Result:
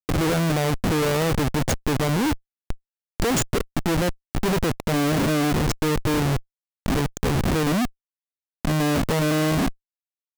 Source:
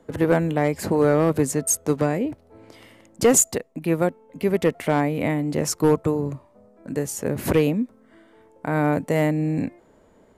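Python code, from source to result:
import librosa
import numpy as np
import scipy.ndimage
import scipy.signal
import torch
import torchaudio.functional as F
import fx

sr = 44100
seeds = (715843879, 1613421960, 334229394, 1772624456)

y = fx.wiener(x, sr, points=41)
y = fx.env_lowpass_down(y, sr, base_hz=2600.0, full_db=-20.0)
y = fx.schmitt(y, sr, flips_db=-34.0)
y = F.gain(torch.from_numpy(y), 3.5).numpy()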